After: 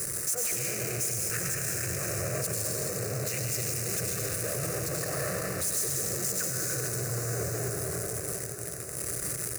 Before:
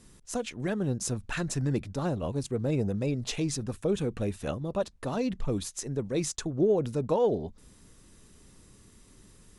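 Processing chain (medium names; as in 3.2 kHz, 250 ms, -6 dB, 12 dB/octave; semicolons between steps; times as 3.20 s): compressor with a negative ratio -38 dBFS, ratio -1; peaking EQ 140 Hz +3.5 dB 1.4 oct; hum notches 50/100/150/200/250 Hz; algorithmic reverb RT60 3.8 s, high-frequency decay 0.85×, pre-delay 60 ms, DRR -3 dB; power-law waveshaper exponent 0.35; high-pass 110 Hz 12 dB/octave; treble shelf 6.6 kHz +11.5 dB; static phaser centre 910 Hz, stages 6; echo that smears into a reverb 957 ms, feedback 42%, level -9.5 dB; peak limiter -13.5 dBFS, peak gain reduction 6.5 dB; slew-rate limiter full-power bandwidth 1.4 kHz; trim -6 dB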